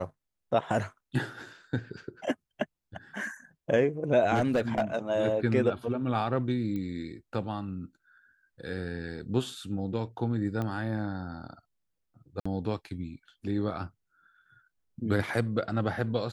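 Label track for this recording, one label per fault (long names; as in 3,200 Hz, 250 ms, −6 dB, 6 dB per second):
4.340000	4.960000	clipping −20.5 dBFS
6.760000	6.760000	click −25 dBFS
10.620000	10.620000	click −21 dBFS
12.400000	12.460000	drop-out 55 ms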